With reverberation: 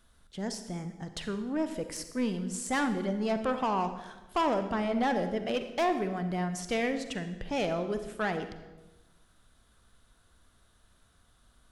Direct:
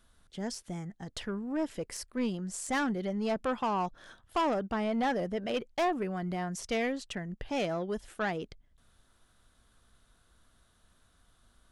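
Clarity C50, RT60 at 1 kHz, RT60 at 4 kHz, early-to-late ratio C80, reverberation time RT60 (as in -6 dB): 9.5 dB, 1.0 s, 0.90 s, 11.5 dB, 1.1 s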